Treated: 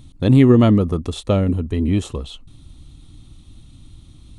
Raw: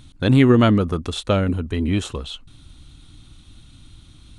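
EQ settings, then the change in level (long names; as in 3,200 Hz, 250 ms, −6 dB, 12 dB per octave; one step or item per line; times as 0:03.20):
tilt shelving filter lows +5.5 dB, about 1,100 Hz
high-shelf EQ 4,700 Hz +8.5 dB
notch filter 1,500 Hz, Q 6
−2.5 dB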